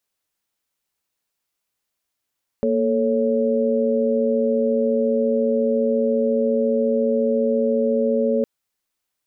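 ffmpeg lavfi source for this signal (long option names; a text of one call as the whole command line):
ffmpeg -f lavfi -i "aevalsrc='0.0891*(sin(2*PI*233.08*t)+sin(2*PI*440*t)+sin(2*PI*554.37*t))':duration=5.81:sample_rate=44100" out.wav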